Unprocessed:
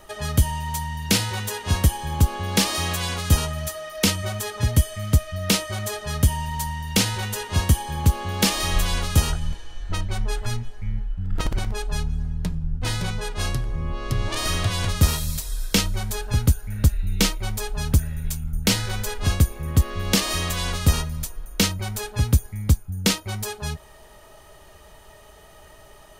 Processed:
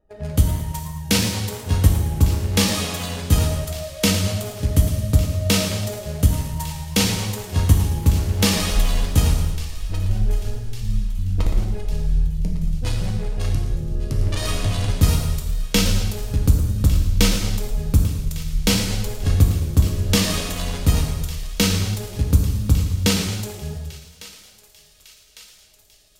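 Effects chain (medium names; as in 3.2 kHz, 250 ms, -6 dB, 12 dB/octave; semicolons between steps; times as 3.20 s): local Wiener filter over 41 samples; gate -42 dBFS, range -15 dB; thinning echo 1153 ms, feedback 65%, high-pass 1.2 kHz, level -17 dB; gated-style reverb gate 350 ms falling, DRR 0.5 dB; modulated delay 111 ms, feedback 51%, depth 218 cents, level -12 dB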